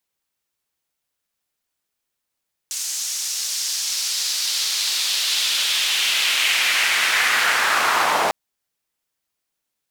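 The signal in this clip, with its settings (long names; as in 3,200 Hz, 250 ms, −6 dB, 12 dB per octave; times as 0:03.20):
filter sweep on noise white, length 5.60 s bandpass, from 6,400 Hz, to 730 Hz, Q 1.9, linear, gain ramp +16 dB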